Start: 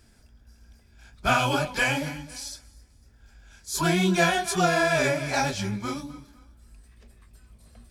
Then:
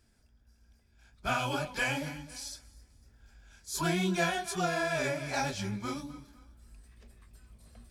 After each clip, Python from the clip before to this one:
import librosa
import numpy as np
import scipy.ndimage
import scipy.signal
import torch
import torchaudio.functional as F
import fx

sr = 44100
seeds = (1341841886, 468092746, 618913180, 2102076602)

y = fx.rider(x, sr, range_db=5, speed_s=2.0)
y = F.gain(torch.from_numpy(y), -8.0).numpy()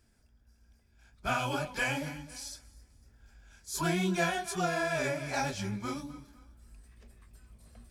y = fx.peak_eq(x, sr, hz=3900.0, db=-2.5, octaves=0.77)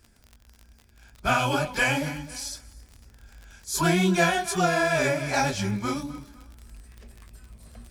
y = fx.dmg_crackle(x, sr, seeds[0], per_s=50.0, level_db=-44.0)
y = F.gain(torch.from_numpy(y), 8.0).numpy()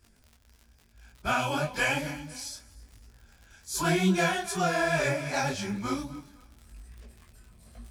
y = fx.detune_double(x, sr, cents=35)